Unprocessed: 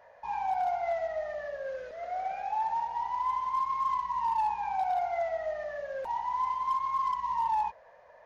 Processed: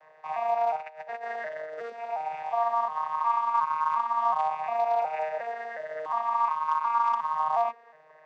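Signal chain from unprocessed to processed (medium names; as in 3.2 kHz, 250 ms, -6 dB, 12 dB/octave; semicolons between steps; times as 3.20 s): vocoder on a broken chord bare fifth, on D#3, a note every 360 ms; 0.77–1.90 s: compressor with a negative ratio -39 dBFS, ratio -0.5; tilt shelf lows -7 dB, about 790 Hz; trim +3.5 dB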